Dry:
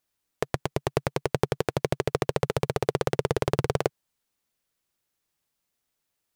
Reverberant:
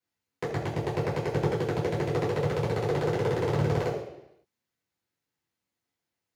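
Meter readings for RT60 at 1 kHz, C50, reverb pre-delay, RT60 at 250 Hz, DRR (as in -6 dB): 0.85 s, 5.0 dB, 3 ms, 0.85 s, -9.0 dB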